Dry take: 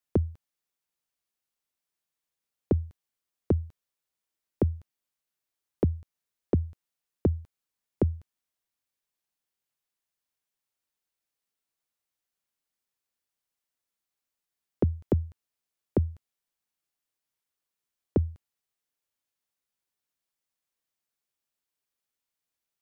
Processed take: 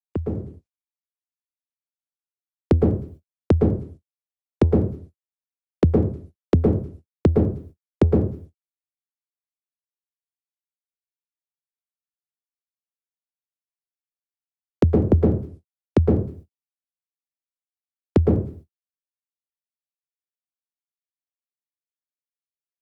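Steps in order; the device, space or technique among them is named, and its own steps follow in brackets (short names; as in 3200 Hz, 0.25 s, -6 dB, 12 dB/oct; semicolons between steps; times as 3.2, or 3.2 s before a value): speakerphone in a meeting room (reverb RT60 0.45 s, pre-delay 0.108 s, DRR -1.5 dB; AGC gain up to 12.5 dB; gate -37 dBFS, range -59 dB; gain -3 dB; Opus 24 kbps 48000 Hz)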